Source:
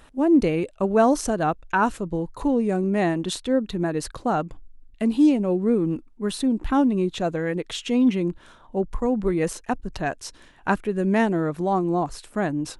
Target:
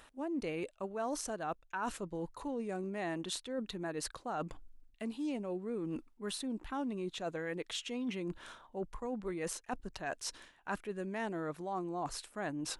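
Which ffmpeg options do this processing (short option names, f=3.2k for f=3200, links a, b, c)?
-af "lowshelf=f=390:g=-10.5,areverse,acompressor=threshold=-39dB:ratio=4,areverse,volume=1dB"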